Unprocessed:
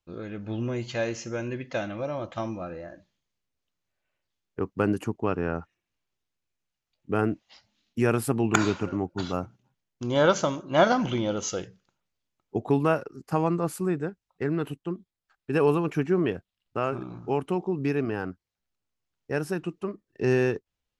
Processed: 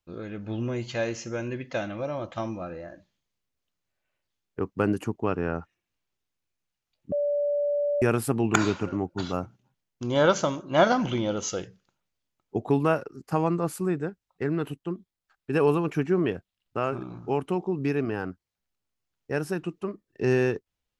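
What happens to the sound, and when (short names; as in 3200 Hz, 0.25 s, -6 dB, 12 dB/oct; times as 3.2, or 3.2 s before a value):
7.12–8.02 bleep 580 Hz -22.5 dBFS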